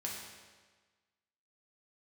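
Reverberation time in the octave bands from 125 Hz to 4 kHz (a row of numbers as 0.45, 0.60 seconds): 1.4, 1.4, 1.4, 1.4, 1.4, 1.3 seconds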